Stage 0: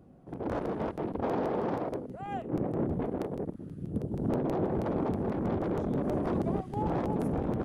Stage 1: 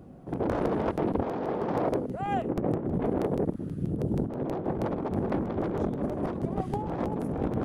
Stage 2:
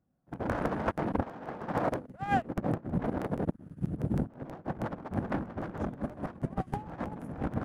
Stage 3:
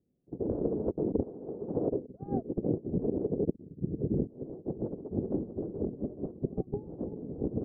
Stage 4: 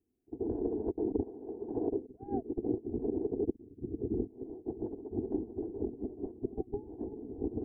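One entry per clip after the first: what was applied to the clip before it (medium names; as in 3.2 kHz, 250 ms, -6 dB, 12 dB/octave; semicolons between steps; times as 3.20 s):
compressor with a negative ratio -33 dBFS, ratio -0.5; trim +5 dB
fifteen-band graphic EQ 400 Hz -8 dB, 1.6 kHz +6 dB, 4 kHz -5 dB; in parallel at -3.5 dB: crossover distortion -39 dBFS; on the sum: upward expansion 2.5:1, over -41 dBFS
four-pole ladder low-pass 460 Hz, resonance 65%; trim +8.5 dB
static phaser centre 830 Hz, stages 8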